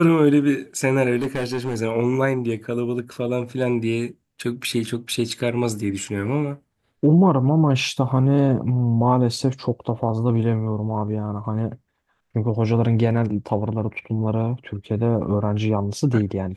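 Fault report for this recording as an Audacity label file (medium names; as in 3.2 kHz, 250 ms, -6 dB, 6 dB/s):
1.180000	1.770000	clipped -20 dBFS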